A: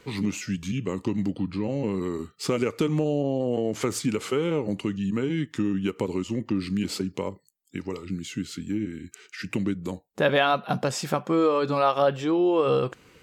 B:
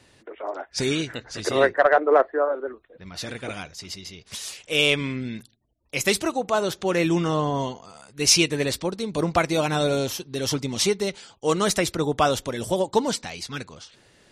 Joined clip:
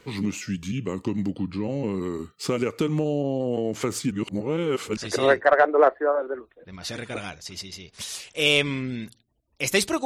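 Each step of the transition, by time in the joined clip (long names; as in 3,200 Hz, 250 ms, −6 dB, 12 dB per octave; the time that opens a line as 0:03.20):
A
0:04.11–0:04.97: reverse
0:04.97: continue with B from 0:01.30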